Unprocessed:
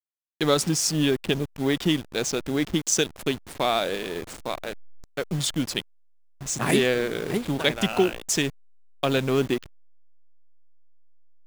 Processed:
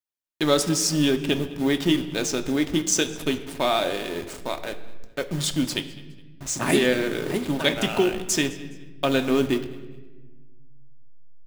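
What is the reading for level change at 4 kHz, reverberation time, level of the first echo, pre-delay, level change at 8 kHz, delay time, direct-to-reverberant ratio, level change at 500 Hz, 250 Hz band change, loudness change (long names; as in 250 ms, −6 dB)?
+1.0 dB, 1.3 s, −21.0 dB, 3 ms, +1.0 dB, 208 ms, 6.0 dB, +1.0 dB, +2.5 dB, +1.0 dB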